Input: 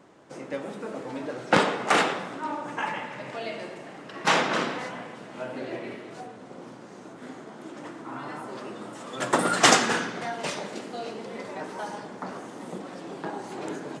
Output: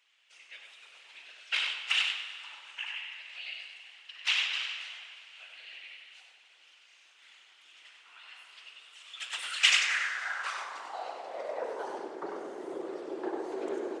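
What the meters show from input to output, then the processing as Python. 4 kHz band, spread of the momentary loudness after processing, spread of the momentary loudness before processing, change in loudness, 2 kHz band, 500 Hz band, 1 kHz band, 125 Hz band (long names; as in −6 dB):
+0.5 dB, 22 LU, 19 LU, −3.5 dB, −3.5 dB, −9.5 dB, −14.0 dB, below −30 dB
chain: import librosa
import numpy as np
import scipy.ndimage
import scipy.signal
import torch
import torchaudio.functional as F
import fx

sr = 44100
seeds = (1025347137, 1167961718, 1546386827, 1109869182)

y = scipy.signal.sosfilt(scipy.signal.butter(2, 180.0, 'highpass', fs=sr, output='sos'), x)
y = fx.high_shelf(y, sr, hz=8200.0, db=-9.0)
y = fx.whisperise(y, sr, seeds[0])
y = fx.rev_plate(y, sr, seeds[1], rt60_s=3.2, hf_ratio=0.8, predelay_ms=0, drr_db=10.5)
y = fx.filter_sweep_highpass(y, sr, from_hz=2800.0, to_hz=380.0, start_s=9.56, end_s=11.98, q=3.9)
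y = y + 10.0 ** (-6.0 / 20.0) * np.pad(y, (int(97 * sr / 1000.0), 0))[:len(y)]
y = y * 10.0 ** (-7.5 / 20.0)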